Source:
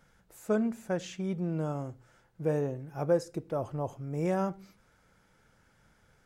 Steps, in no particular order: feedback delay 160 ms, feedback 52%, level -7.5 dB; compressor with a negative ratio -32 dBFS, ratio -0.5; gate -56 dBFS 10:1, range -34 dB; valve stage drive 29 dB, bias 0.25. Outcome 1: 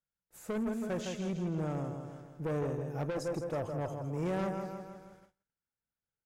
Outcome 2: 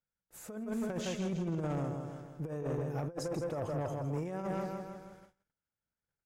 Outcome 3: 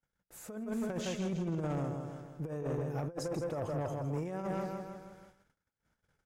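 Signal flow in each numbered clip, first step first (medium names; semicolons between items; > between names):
feedback delay > valve stage > compressor with a negative ratio > gate; feedback delay > gate > compressor with a negative ratio > valve stage; feedback delay > compressor with a negative ratio > gate > valve stage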